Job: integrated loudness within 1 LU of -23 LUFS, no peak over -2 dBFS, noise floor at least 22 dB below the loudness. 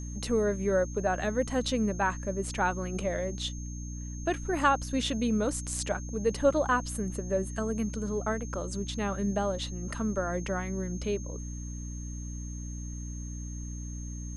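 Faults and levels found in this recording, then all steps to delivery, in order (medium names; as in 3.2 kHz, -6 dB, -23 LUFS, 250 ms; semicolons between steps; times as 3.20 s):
hum 60 Hz; highest harmonic 300 Hz; hum level -36 dBFS; steady tone 6.4 kHz; tone level -46 dBFS; loudness -31.5 LUFS; peak level -12.0 dBFS; loudness target -23.0 LUFS
-> hum notches 60/120/180/240/300 Hz; band-stop 6.4 kHz, Q 30; trim +8.5 dB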